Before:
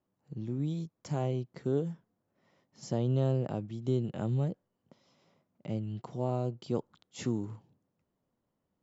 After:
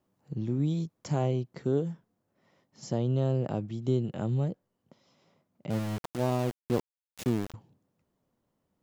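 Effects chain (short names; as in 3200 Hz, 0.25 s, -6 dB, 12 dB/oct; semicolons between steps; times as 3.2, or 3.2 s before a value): vocal rider within 3 dB 0.5 s; 5.7–7.54 sample gate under -35.5 dBFS; gain +3.5 dB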